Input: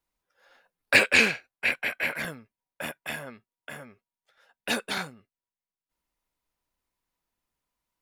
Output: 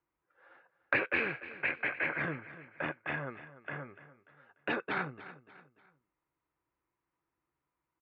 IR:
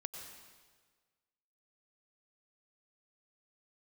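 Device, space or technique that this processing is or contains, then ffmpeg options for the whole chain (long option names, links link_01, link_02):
bass amplifier: -af "acompressor=threshold=-28dB:ratio=3,highpass=64,equalizer=frequency=140:width_type=q:width=4:gain=6,equalizer=frequency=220:width_type=q:width=4:gain=-8,equalizer=frequency=330:width_type=q:width=4:gain=9,equalizer=frequency=640:width_type=q:width=4:gain=-3,equalizer=frequency=1200:width_type=q:width=4:gain=4,lowpass=frequency=2300:width=0.5412,lowpass=frequency=2300:width=1.3066,equalizer=frequency=4200:width_type=o:width=0.29:gain=2,aecho=1:1:293|586|879:0.168|0.0655|0.0255"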